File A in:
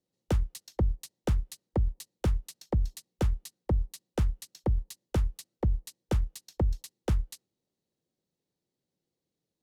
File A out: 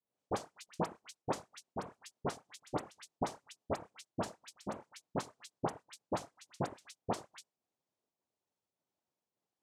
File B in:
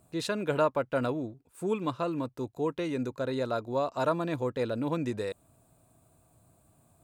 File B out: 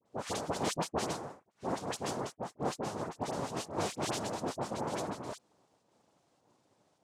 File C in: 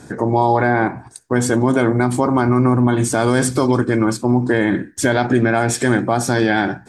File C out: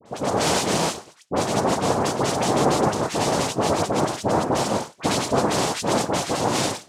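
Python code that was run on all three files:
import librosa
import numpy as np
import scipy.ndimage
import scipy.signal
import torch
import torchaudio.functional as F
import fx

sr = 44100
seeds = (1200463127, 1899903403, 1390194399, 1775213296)

y = fx.volume_shaper(x, sr, bpm=104, per_beat=1, depth_db=-5, release_ms=81.0, shape='slow start')
y = fx.noise_vocoder(y, sr, seeds[0], bands=2)
y = fx.dispersion(y, sr, late='highs', ms=58.0, hz=1700.0)
y = F.gain(torch.from_numpy(y), -5.5).numpy()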